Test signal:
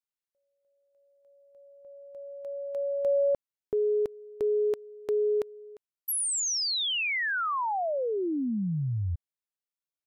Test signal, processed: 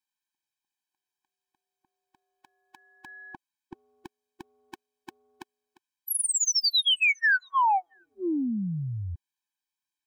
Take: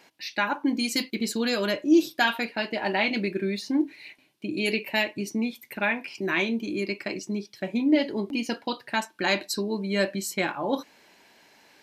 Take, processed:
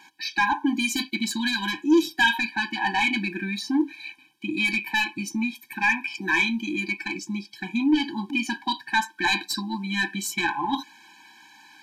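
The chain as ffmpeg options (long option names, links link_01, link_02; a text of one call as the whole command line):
ffmpeg -i in.wav -filter_complex "[0:a]asplit=2[link_01][link_02];[link_02]highpass=frequency=720:poles=1,volume=15dB,asoftclip=type=tanh:threshold=-9dB[link_03];[link_01][link_03]amix=inputs=2:normalize=0,lowpass=frequency=6400:poles=1,volume=-6dB,afftfilt=real='re*eq(mod(floor(b*sr/1024/370),2),0)':imag='im*eq(mod(floor(b*sr/1024/370),2),0)':win_size=1024:overlap=0.75" out.wav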